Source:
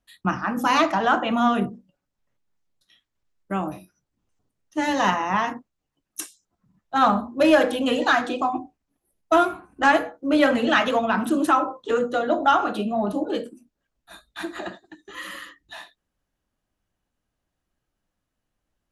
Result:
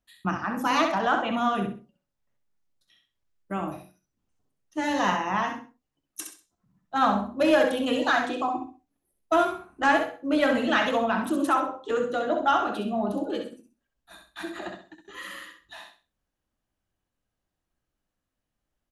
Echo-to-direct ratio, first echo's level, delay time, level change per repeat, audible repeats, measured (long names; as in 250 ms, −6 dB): −5.5 dB, −6.0 dB, 65 ms, −11.5 dB, 3